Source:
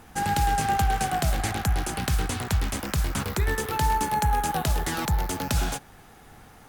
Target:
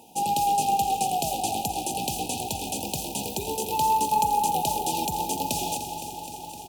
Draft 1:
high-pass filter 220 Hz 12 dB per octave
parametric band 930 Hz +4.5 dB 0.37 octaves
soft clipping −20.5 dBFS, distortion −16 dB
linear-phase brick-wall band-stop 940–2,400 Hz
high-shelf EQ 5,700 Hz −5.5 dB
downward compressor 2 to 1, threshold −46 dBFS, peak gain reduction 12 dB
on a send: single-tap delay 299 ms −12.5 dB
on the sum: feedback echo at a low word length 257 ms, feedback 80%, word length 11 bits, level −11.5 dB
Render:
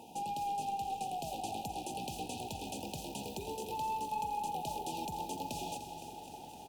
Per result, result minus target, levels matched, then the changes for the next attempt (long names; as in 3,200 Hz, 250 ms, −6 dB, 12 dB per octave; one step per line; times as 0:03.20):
downward compressor: peak gain reduction +12 dB; soft clipping: distortion +10 dB; 8,000 Hz band −3.5 dB
remove: downward compressor 2 to 1, threshold −46 dBFS, peak gain reduction 12 dB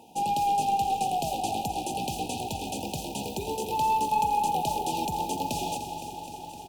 soft clipping: distortion +10 dB; 8,000 Hz band −5.0 dB
change: soft clipping −13.5 dBFS, distortion −26 dB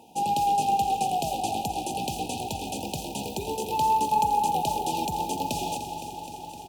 8,000 Hz band −5.5 dB
change: high-shelf EQ 5,700 Hz +4 dB